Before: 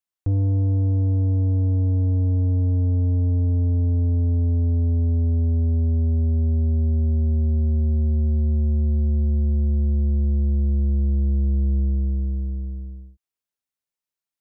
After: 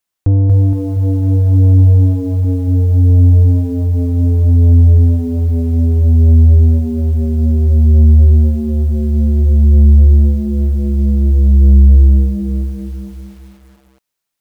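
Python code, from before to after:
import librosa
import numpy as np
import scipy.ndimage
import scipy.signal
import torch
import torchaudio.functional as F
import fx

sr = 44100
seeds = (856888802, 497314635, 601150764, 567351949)

y = fx.rider(x, sr, range_db=4, speed_s=0.5)
y = fx.notch_comb(y, sr, f0_hz=330.0, at=(2.44, 3.1))
y = fx.echo_crushed(y, sr, ms=234, feedback_pct=55, bits=9, wet_db=-4.0)
y = F.gain(torch.from_numpy(y), 8.5).numpy()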